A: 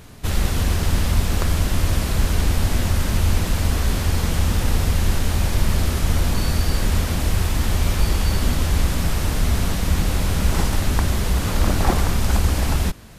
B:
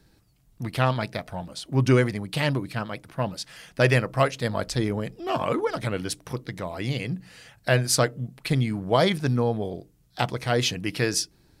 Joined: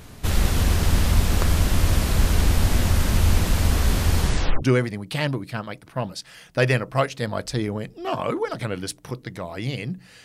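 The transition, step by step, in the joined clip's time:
A
4.2 tape stop 0.42 s
4.62 switch to B from 1.84 s

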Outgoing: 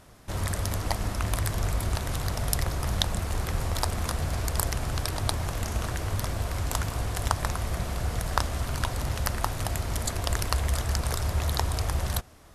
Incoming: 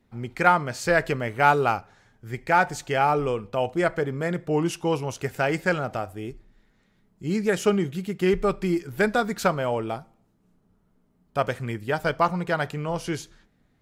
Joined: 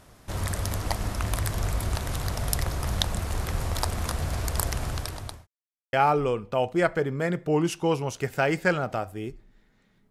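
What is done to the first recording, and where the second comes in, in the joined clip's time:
outgoing
4.85–5.47 fade out linear
5.47–5.93 mute
5.93 switch to incoming from 2.94 s

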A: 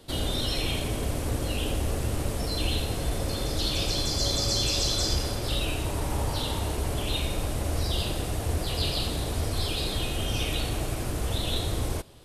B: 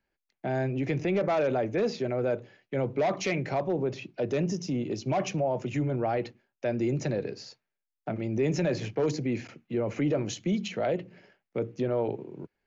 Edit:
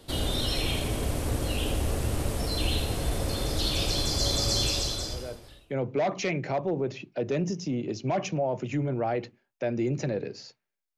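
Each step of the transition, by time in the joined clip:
A
5.24 switch to B from 2.26 s, crossfade 1.20 s quadratic

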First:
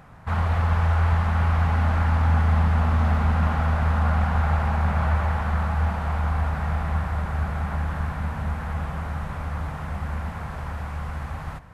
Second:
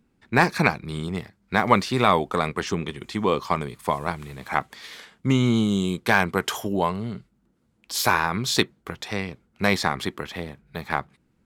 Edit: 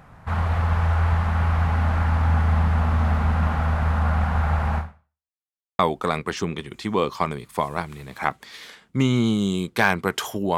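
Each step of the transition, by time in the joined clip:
first
4.78–5.33 fade out exponential
5.33–5.79 mute
5.79 switch to second from 2.09 s

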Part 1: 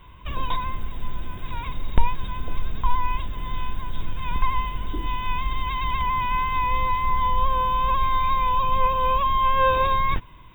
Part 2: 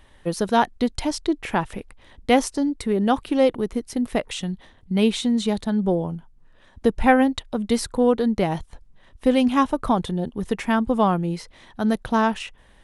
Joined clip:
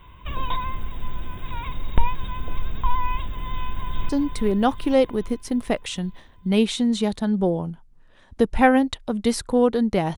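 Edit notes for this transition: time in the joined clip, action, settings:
part 1
3.33–4.09 echo throw 0.42 s, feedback 60%, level -6 dB
4.09 switch to part 2 from 2.54 s

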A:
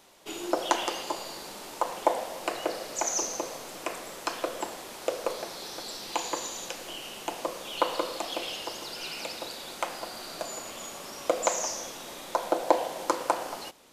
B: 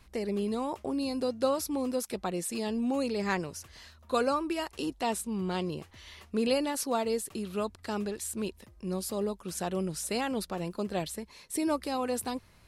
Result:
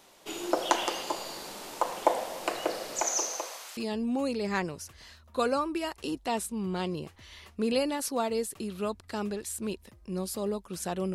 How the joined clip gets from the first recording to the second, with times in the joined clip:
A
3.01–3.77 HPF 220 Hz -> 1500 Hz
3.77 switch to B from 2.52 s

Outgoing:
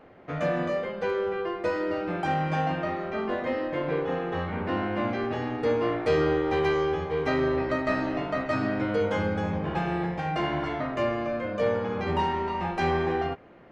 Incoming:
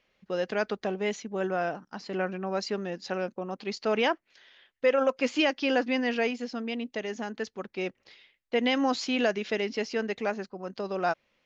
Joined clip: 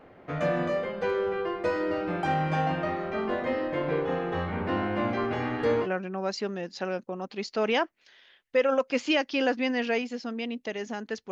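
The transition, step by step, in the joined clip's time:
outgoing
5.04–5.88 delay with a stepping band-pass 0.132 s, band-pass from 1200 Hz, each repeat 0.7 oct, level -1 dB
5.84 switch to incoming from 2.13 s, crossfade 0.08 s

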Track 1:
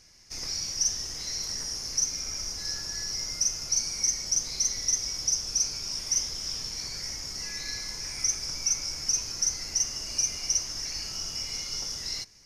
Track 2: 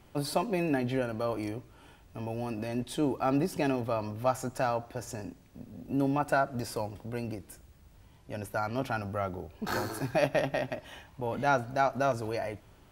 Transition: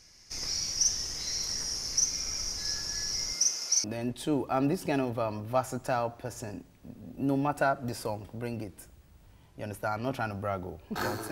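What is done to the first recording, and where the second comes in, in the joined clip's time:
track 1
3.32–3.84 HPF 170 Hz -> 660 Hz
3.84 switch to track 2 from 2.55 s

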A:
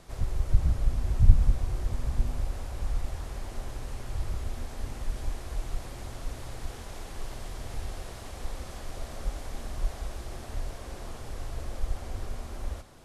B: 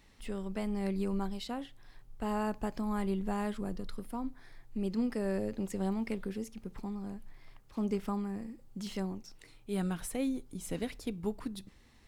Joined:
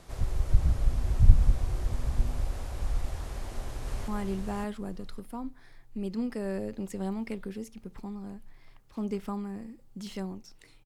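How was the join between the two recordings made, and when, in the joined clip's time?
A
3.29–4.08 echo throw 0.56 s, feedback 15%, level -3 dB
4.08 switch to B from 2.88 s

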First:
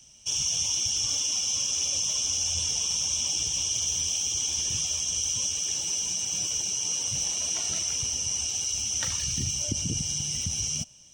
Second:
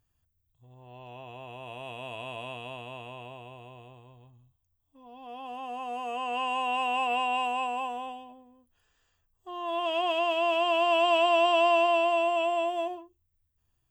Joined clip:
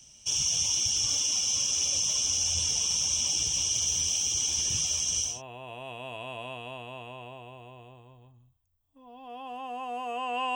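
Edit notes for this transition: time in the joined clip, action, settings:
first
5.31 switch to second from 1.3 s, crossfade 0.22 s

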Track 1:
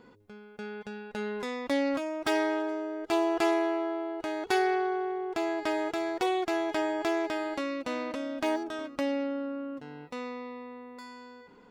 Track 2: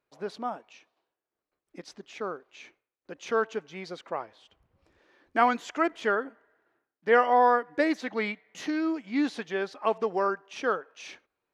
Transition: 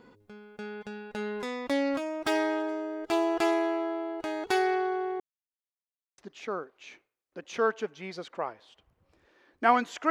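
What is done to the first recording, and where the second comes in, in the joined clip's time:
track 1
5.2–6.18 mute
6.18 switch to track 2 from 1.91 s

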